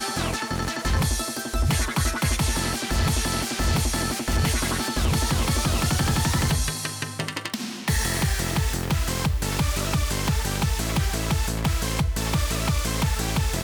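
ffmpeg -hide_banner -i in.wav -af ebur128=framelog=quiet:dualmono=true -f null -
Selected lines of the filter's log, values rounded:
Integrated loudness:
  I:         -21.5 LUFS
  Threshold: -31.5 LUFS
Loudness range:
  LRA:         1.8 LU
  Threshold: -41.4 LUFS
  LRA low:   -22.2 LUFS
  LRA high:  -20.5 LUFS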